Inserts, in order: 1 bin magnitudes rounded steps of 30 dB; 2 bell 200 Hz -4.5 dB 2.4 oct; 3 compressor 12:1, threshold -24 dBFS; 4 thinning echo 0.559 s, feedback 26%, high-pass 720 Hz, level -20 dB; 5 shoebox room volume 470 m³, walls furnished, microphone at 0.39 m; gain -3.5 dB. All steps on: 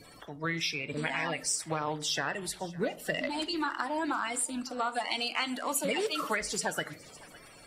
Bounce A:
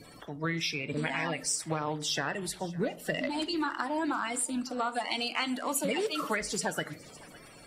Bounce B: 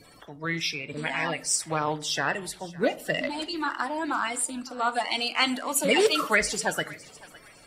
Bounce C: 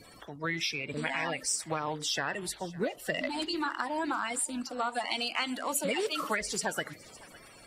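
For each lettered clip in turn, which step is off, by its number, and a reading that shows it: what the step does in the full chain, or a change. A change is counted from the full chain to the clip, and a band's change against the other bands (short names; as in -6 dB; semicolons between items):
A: 2, 125 Hz band +3.5 dB; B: 3, mean gain reduction 3.0 dB; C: 5, echo-to-direct -13.5 dB to -21.0 dB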